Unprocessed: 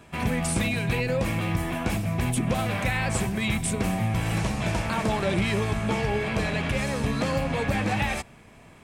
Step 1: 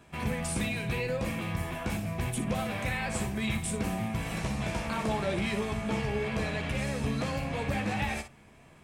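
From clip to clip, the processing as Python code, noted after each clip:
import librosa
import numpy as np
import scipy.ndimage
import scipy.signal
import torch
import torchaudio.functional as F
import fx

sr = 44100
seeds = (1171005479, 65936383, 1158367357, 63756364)

y = fx.room_early_taps(x, sr, ms=(14, 59), db=(-8.0, -9.5))
y = y * librosa.db_to_amplitude(-6.5)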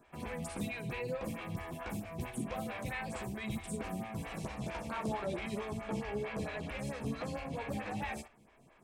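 y = fx.stagger_phaser(x, sr, hz=4.5)
y = y * librosa.db_to_amplitude(-4.0)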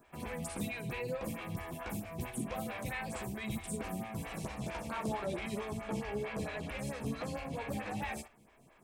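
y = fx.high_shelf(x, sr, hz=10000.0, db=8.5)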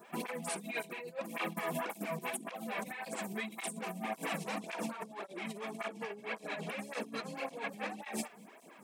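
y = fx.over_compress(x, sr, threshold_db=-43.0, ratio=-0.5)
y = fx.brickwall_highpass(y, sr, low_hz=160.0)
y = fx.flanger_cancel(y, sr, hz=1.8, depth_ms=3.9)
y = y * librosa.db_to_amplitude(7.0)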